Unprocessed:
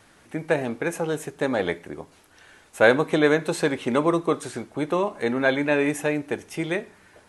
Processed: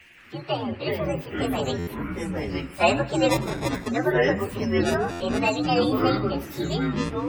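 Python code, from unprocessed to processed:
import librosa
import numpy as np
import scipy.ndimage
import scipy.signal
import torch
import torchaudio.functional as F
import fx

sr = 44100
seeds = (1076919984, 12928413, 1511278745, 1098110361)

p1 = fx.partial_stretch(x, sr, pct=128)
p2 = fx.dmg_noise_band(p1, sr, seeds[0], low_hz=1600.0, high_hz=2800.0, level_db=-53.0)
p3 = fx.sample_hold(p2, sr, seeds[1], rate_hz=1500.0, jitter_pct=0, at=(3.28, 3.9), fade=0.02)
p4 = fx.spec_gate(p3, sr, threshold_db=-30, keep='strong')
p5 = fx.high_shelf(p4, sr, hz=5700.0, db=5.0)
p6 = p5 + fx.echo_feedback(p5, sr, ms=100, feedback_pct=42, wet_db=-18.5, dry=0)
p7 = fx.echo_pitch(p6, sr, ms=176, semitones=-6, count=3, db_per_echo=-3.0)
y = fx.buffer_glitch(p7, sr, at_s=(1.78, 5.11), block=512, repeats=7)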